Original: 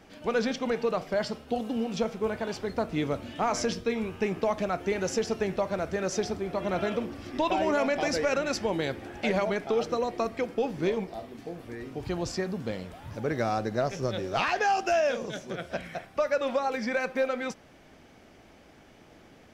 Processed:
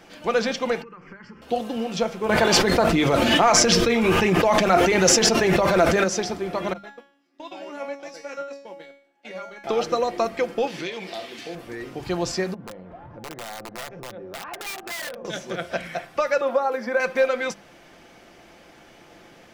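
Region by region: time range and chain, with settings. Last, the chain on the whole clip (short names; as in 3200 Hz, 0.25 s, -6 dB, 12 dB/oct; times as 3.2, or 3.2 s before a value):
0.82–1.42 compressor 12:1, threshold -37 dBFS + air absorption 200 m + fixed phaser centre 1600 Hz, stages 4
2.29–6.04 phaser 1.5 Hz, delay 4.9 ms, feedback 30% + fast leveller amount 100%
6.73–9.64 steep high-pass 160 Hz 48 dB/oct + gate -29 dBFS, range -19 dB + resonator 280 Hz, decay 0.54 s, mix 90%
10.67–11.55 weighting filter D + compressor 4:1, threshold -34 dBFS
12.54–15.25 LPF 1100 Hz + wrapped overs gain 22.5 dB + compressor 5:1, threshold -40 dBFS
16.41–17 elliptic high-pass 230 Hz + band shelf 4200 Hz -10 dB 2.4 oct
whole clip: low shelf 350 Hz -6.5 dB; notches 50/100/150/200 Hz; comb 5.8 ms, depth 35%; gain +7 dB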